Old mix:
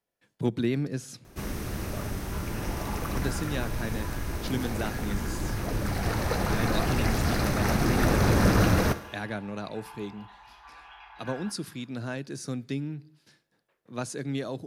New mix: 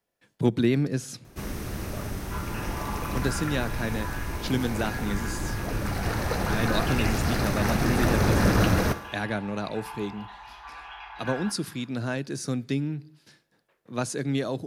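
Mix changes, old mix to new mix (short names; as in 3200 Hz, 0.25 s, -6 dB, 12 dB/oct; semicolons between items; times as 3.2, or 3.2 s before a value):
speech +4.5 dB; second sound +7.0 dB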